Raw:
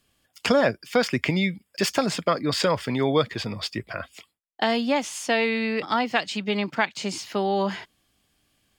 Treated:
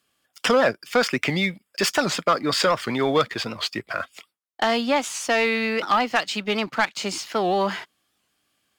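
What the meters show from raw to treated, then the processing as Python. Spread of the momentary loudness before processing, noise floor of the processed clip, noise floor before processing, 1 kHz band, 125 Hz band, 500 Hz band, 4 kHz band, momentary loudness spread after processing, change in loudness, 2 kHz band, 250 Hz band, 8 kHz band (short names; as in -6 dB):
9 LU, -77 dBFS, -75 dBFS, +3.5 dB, -3.0 dB, +1.5 dB, +3.0 dB, 7 LU, +2.0 dB, +3.0 dB, -1.0 dB, +3.5 dB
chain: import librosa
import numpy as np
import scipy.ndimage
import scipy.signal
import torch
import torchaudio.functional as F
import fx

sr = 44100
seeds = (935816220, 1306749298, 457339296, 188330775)

y = fx.highpass(x, sr, hz=290.0, slope=6)
y = fx.peak_eq(y, sr, hz=1300.0, db=5.5, octaves=0.43)
y = fx.leveller(y, sr, passes=1)
y = 10.0 ** (-9.5 / 20.0) * np.tanh(y / 10.0 ** (-9.5 / 20.0))
y = fx.record_warp(y, sr, rpm=78.0, depth_cents=160.0)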